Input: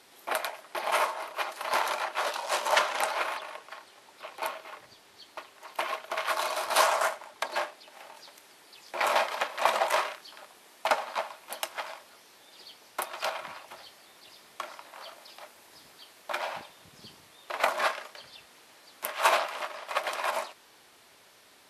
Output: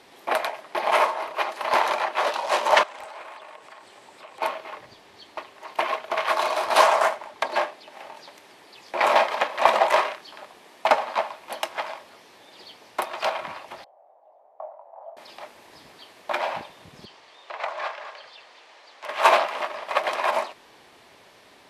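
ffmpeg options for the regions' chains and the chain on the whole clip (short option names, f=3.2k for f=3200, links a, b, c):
-filter_complex "[0:a]asettb=1/sr,asplit=3[a][b][c];[a]atrim=end=2.834[d];[b]atrim=start=2.83:end=4.41,asetpts=PTS-STARTPTS,afade=t=in:d=0.004:c=qsin,afade=t=out:st=1.576:d=0.004:c=qsin,equalizer=f=8k:t=o:w=0.32:g=9.5,asoftclip=type=hard:threshold=-21dB,acompressor=threshold=-49dB:ratio=3:attack=3.2:release=140:knee=1:detection=peak[e];[c]atrim=start=4.406[f];[d][e]acrossfade=d=0.004:c1=hsin:c2=qsin[g];[g][f]acrossfade=d=0.004:c1=qsin:c2=hsin,asettb=1/sr,asplit=3[h][i][j];[h]atrim=end=13.844[k];[i]atrim=start=13.84:end=15.17,asetpts=PTS-STARTPTS,afade=t=in:d=0.004:c=qsin,afade=t=out:st=1.326:d=0.004:c=qsin,asuperpass=centerf=690:order=4:qfactor=2.6,asplit=2[l][m];[m]adelay=21,volume=-6dB[n];[l][n]amix=inputs=2:normalize=0,atrim=end_sample=58653[o];[j]atrim=start=15.166[p];[k][o]acrossfade=d=0.004:c1=hsin:c2=qsin[q];[q][p]acrossfade=d=0.004:c1=qsin:c2=hsin,asettb=1/sr,asplit=3[r][s][t];[r]atrim=end=17.054[u];[s]atrim=start=17.05:end=19.09,asetpts=PTS-STARTPTS,afade=t=in:d=0.004:c=qsin,afade=t=out:st=2.036:d=0.004:c=qsin,acrossover=split=420 7800:gain=0.0891 1 0.0794[v][w][x];[v][w][x]amix=inputs=3:normalize=0,acompressor=threshold=-49dB:ratio=1.5:attack=3.2:release=140:knee=1:detection=peak,aecho=1:1:226:0.299,atrim=end_sample=89964[y];[t]atrim=start=19.086[z];[u][y]acrossfade=d=0.004:c1=hsin:c2=qsin[aa];[aa][z]acrossfade=d=0.004:c1=qsin:c2=hsin,lowpass=f=2.4k:p=1,equalizer=f=1.4k:t=o:w=0.31:g=-5,volume=8.5dB"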